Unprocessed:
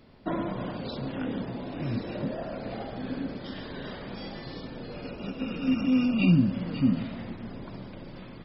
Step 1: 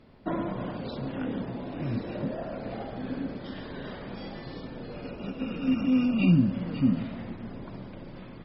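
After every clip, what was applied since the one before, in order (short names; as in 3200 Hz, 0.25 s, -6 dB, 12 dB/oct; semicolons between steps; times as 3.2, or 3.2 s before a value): LPF 3100 Hz 6 dB/oct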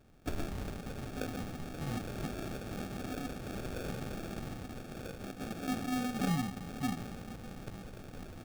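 resonant low shelf 770 Hz -10 dB, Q 3; vocal rider within 4 dB 2 s; sample-rate reducer 1000 Hz, jitter 0%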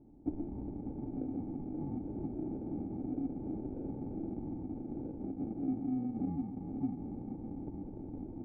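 octaver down 1 oct, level -5 dB; compressor 3:1, threshold -41 dBFS, peak gain reduction 11 dB; vocal tract filter u; gain +13.5 dB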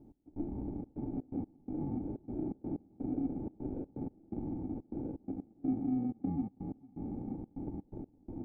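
step gate "x..xxxx.xx." 125 bpm -24 dB; gain +2 dB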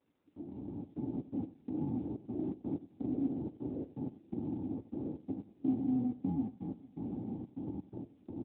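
opening faded in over 1.05 s; echo 93 ms -17 dB; gain +1 dB; AMR-NB 10.2 kbps 8000 Hz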